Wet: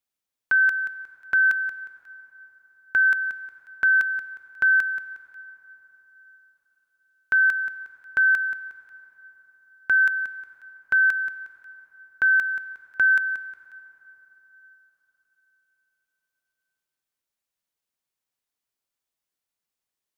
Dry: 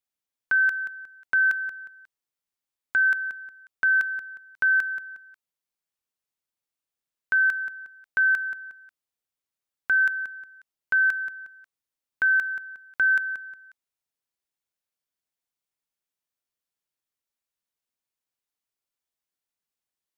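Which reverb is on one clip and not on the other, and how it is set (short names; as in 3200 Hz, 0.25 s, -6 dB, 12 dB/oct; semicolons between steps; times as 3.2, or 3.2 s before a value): plate-style reverb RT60 4.2 s, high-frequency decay 0.5×, pre-delay 80 ms, DRR 16.5 dB; gain +2 dB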